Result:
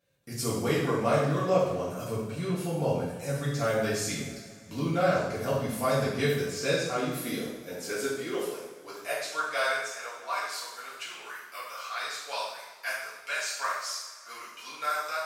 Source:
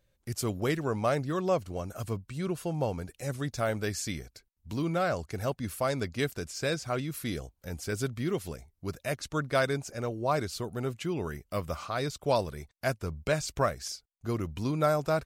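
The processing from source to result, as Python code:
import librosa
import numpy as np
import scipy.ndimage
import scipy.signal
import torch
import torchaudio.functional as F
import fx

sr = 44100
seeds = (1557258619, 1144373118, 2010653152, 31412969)

y = fx.filter_sweep_highpass(x, sr, from_hz=140.0, to_hz=1400.0, start_s=6.45, end_s=10.26, q=1.1)
y = fx.rev_double_slope(y, sr, seeds[0], early_s=0.84, late_s=3.4, knee_db=-19, drr_db=-9.0)
y = y * librosa.db_to_amplitude(-6.0)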